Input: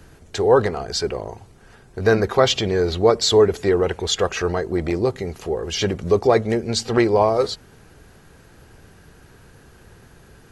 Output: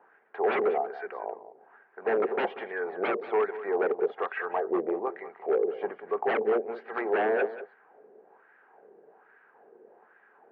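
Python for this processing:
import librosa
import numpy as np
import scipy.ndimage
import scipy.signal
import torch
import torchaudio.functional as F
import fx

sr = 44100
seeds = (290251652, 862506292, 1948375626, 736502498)

p1 = fx.octave_divider(x, sr, octaves=2, level_db=1.0)
p2 = fx.wah_lfo(p1, sr, hz=1.2, low_hz=420.0, high_hz=1700.0, q=2.7)
p3 = 10.0 ** (-22.0 / 20.0) * (np.abs((p2 / 10.0 ** (-22.0 / 20.0) + 3.0) % 4.0 - 2.0) - 1.0)
p4 = fx.cabinet(p3, sr, low_hz=220.0, low_slope=24, high_hz=2200.0, hz=(290.0, 420.0, 780.0, 1300.0), db=(-4, 6, 6, -3))
y = p4 + fx.echo_single(p4, sr, ms=188, db=-14.0, dry=0)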